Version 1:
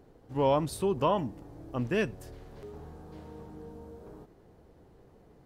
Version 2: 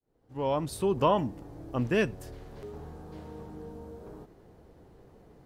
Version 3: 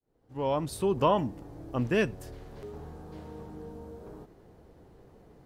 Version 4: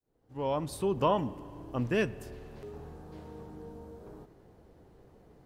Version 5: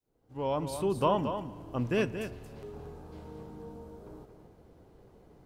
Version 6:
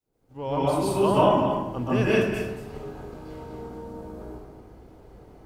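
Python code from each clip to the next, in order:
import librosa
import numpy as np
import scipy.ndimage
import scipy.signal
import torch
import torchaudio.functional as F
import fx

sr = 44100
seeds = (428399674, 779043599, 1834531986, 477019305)

y1 = fx.fade_in_head(x, sr, length_s=1.01)
y1 = F.gain(torch.from_numpy(y1), 2.5).numpy()
y2 = y1
y3 = fx.rev_spring(y2, sr, rt60_s=2.4, pass_ms=(41, 57), chirp_ms=65, drr_db=18.5)
y3 = F.gain(torch.from_numpy(y3), -2.5).numpy()
y4 = fx.notch(y3, sr, hz=1800.0, q=15.0)
y4 = y4 + 10.0 ** (-8.5 / 20.0) * np.pad(y4, (int(227 * sr / 1000.0), 0))[:len(y4)]
y5 = fx.rev_plate(y4, sr, seeds[0], rt60_s=0.77, hf_ratio=0.65, predelay_ms=115, drr_db=-8.5)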